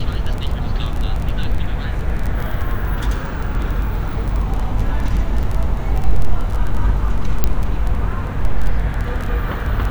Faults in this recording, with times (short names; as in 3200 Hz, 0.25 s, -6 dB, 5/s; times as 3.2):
crackle 14/s -19 dBFS
5.43–5.44 gap 5.3 ms
7.44 pop -1 dBFS